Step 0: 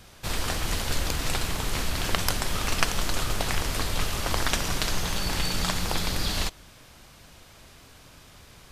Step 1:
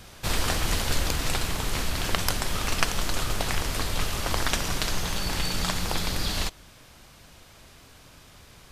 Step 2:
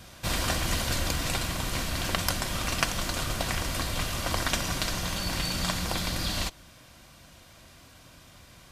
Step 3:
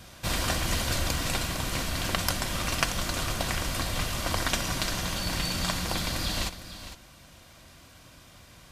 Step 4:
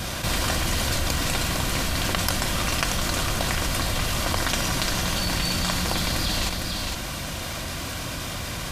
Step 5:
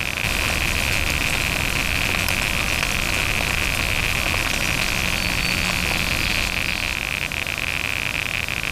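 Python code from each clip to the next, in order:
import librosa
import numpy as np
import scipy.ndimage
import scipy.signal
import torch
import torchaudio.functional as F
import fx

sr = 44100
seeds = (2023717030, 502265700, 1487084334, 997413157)

y1 = fx.rider(x, sr, range_db=10, speed_s=2.0)
y2 = fx.notch_comb(y1, sr, f0_hz=430.0)
y3 = y2 + 10.0 ** (-12.5 / 20.0) * np.pad(y2, (int(455 * sr / 1000.0), 0))[:len(y2)]
y4 = fx.env_flatten(y3, sr, amount_pct=70)
y5 = fx.rattle_buzz(y4, sr, strikes_db=-34.0, level_db=-8.0)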